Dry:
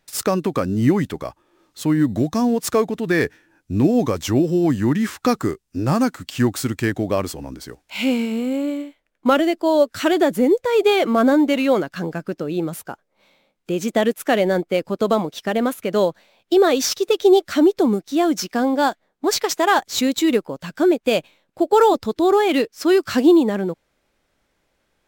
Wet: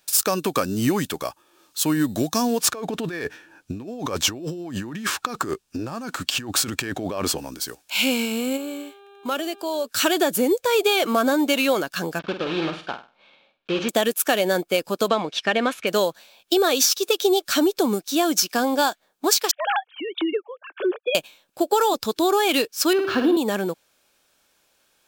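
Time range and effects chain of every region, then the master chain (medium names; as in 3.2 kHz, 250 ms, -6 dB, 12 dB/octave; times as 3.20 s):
2.60–7.38 s: low-pass 2.4 kHz 6 dB/octave + compressor with a negative ratio -27 dBFS
8.56–9.84 s: compression 2:1, threshold -31 dBFS + mains buzz 400 Hz, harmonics 10, -48 dBFS -9 dB/octave
12.19–13.89 s: block-companded coder 3-bit + low-pass 3.4 kHz 24 dB/octave + flutter echo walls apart 8.4 m, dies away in 0.33 s
15.08–15.87 s: low-pass 4.4 kHz + peaking EQ 2.1 kHz +7 dB 0.72 oct
19.51–21.15 s: formants replaced by sine waves + compression 3:1, threshold -19 dBFS
22.93–23.37 s: flutter echo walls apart 9.7 m, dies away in 0.59 s + careless resampling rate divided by 4×, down none, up hold + distance through air 350 m
whole clip: tilt EQ +3 dB/octave; band-stop 2 kHz, Q 6.1; compression, threshold -18 dBFS; trim +2.5 dB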